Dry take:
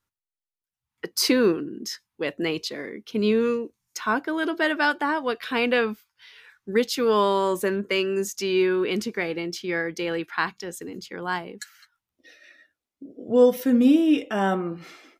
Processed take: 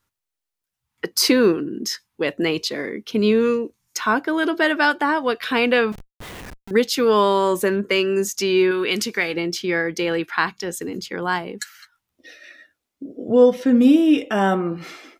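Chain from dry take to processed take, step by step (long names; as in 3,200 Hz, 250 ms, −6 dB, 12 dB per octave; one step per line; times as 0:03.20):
0:08.71–0:09.34: tilt shelving filter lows −5.5 dB, about 1,200 Hz
in parallel at −2 dB: downward compressor, threshold −30 dBFS, peak gain reduction 17 dB
0:05.92–0:06.71: on the sum: comparator with hysteresis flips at −42.5 dBFS
0:13.35–0:13.77: high-frequency loss of the air 79 metres
level +2.5 dB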